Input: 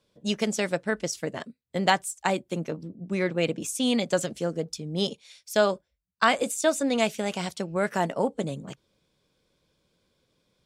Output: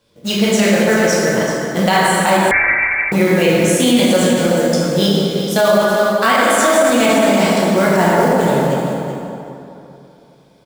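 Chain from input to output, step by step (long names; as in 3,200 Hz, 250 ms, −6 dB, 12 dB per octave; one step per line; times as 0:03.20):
repeating echo 382 ms, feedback 15%, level −10 dB
floating-point word with a short mantissa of 2 bits
dense smooth reverb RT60 2.9 s, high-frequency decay 0.5×, DRR −6.5 dB
0:02.51–0:03.12: voice inversion scrambler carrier 2,500 Hz
boost into a limiter +10.5 dB
level −2.5 dB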